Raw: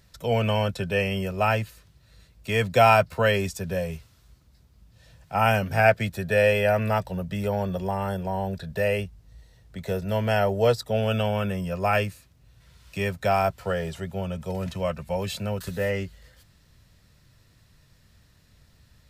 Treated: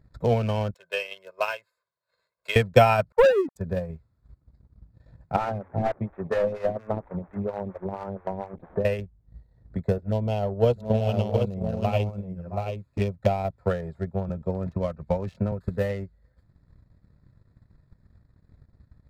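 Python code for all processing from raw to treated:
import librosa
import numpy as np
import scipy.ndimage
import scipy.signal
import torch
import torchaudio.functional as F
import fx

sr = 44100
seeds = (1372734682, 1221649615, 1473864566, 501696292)

y = fx.chain(x, sr, fx.highpass(hz=1000.0, slope=12),
    fx.peak_eq(hz=1800.0, db=-7.0, octaves=0.2),
    fx.comb(ms=1.9, depth=0.75), at=(0.74, 2.56))
y = fx.chain(y, sr, fx.sine_speech(),
    fx.gaussian_blur(sigma=5.3),
    fx.leveller(passes=3), at=(3.12, 3.56))
y = fx.chain(y, sr, fx.delta_mod(bps=16000, step_db=-29.5),
    fx.low_shelf(hz=170.0, db=-4.5),
    fx.stagger_phaser(hz=4.3), at=(5.36, 8.85))
y = fx.chain(y, sr, fx.env_flanger(rest_ms=9.7, full_db=-23.5),
    fx.echo_multitap(ms=(668, 728), db=(-11.0, -4.0)), at=(9.98, 13.58))
y = fx.chain(y, sr, fx.lowpass(hz=7700.0, slope=12),
    fx.band_squash(depth_pct=40), at=(14.29, 15.52))
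y = fx.wiener(y, sr, points=15)
y = fx.low_shelf(y, sr, hz=430.0, db=5.0)
y = fx.transient(y, sr, attack_db=10, sustain_db=-9)
y = y * 10.0 ** (-5.5 / 20.0)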